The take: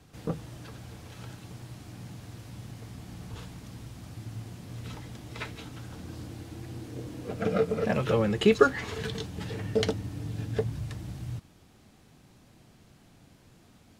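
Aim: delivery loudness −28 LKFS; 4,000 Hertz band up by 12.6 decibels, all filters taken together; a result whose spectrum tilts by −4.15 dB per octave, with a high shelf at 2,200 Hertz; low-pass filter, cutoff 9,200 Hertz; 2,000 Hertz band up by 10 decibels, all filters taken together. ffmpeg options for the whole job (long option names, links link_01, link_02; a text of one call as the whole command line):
ffmpeg -i in.wav -af "lowpass=9200,equalizer=frequency=2000:width_type=o:gain=8,highshelf=frequency=2200:gain=6.5,equalizer=frequency=4000:width_type=o:gain=7.5,volume=-0.5dB" out.wav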